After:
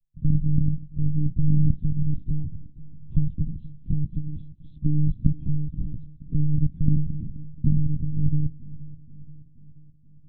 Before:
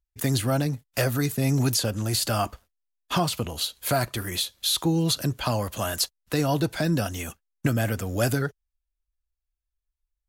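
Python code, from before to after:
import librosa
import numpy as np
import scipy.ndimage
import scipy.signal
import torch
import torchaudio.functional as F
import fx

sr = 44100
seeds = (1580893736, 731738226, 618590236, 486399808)

y = fx.lpc_monotone(x, sr, seeds[0], pitch_hz=150.0, order=10)
y = scipy.signal.sosfilt(scipy.signal.cheby2(4, 50, 520.0, 'lowpass', fs=sr, output='sos'), y)
y = fx.echo_feedback(y, sr, ms=478, feedback_pct=58, wet_db=-18.5)
y = F.gain(torch.from_numpy(y), 7.5).numpy()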